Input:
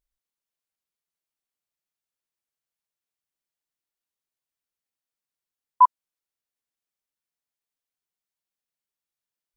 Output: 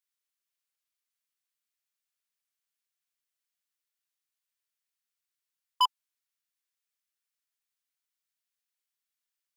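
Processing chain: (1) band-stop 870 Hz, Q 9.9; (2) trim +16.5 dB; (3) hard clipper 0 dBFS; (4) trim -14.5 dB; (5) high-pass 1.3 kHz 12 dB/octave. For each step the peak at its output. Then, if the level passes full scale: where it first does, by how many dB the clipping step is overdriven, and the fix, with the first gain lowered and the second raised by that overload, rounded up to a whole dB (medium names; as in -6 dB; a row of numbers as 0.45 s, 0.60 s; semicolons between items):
-7.5 dBFS, +9.0 dBFS, 0.0 dBFS, -14.5 dBFS, -14.0 dBFS; step 2, 9.0 dB; step 2 +7.5 dB, step 4 -5.5 dB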